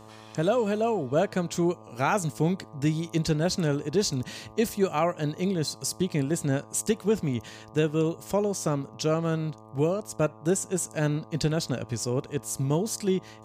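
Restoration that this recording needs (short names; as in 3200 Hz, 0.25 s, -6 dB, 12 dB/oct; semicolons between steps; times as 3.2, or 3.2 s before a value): de-hum 109.1 Hz, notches 11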